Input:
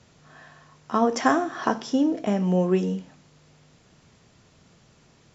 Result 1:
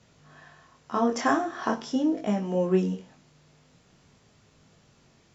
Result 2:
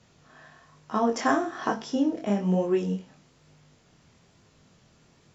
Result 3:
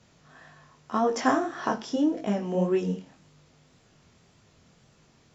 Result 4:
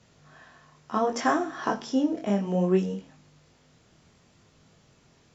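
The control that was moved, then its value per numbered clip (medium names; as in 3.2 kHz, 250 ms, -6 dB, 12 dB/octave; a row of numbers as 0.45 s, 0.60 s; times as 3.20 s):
chorus, rate: 0.44 Hz, 1.1 Hz, 1.8 Hz, 0.65 Hz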